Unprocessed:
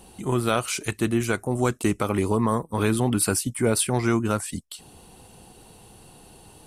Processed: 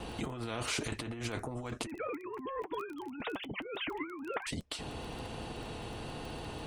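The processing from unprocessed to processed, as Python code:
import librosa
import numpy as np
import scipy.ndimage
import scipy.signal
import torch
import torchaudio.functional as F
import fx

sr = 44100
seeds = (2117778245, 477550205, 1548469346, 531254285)

y = fx.sine_speech(x, sr, at=(1.86, 4.47))
y = scipy.signal.sosfilt(scipy.signal.butter(2, 1900.0, 'lowpass', fs=sr, output='sos'), y)
y = fx.peak_eq(y, sr, hz=1400.0, db=-10.5, octaves=1.8)
y = fx.over_compress(y, sr, threshold_db=-35.0, ratio=-1.0)
y = fx.notch_comb(y, sr, f0_hz=190.0)
y = fx.dmg_crackle(y, sr, seeds[0], per_s=12.0, level_db=-54.0)
y = fx.vibrato(y, sr, rate_hz=1.0, depth_cents=16.0)
y = fx.spectral_comp(y, sr, ratio=2.0)
y = F.gain(torch.from_numpy(y), 1.0).numpy()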